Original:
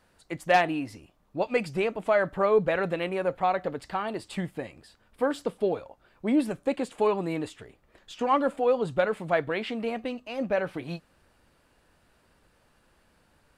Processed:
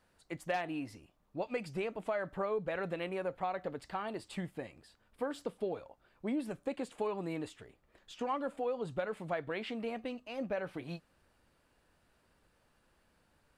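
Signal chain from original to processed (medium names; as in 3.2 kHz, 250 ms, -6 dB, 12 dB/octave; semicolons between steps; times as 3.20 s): compression 4:1, threshold -25 dBFS, peak gain reduction 8 dB; trim -7 dB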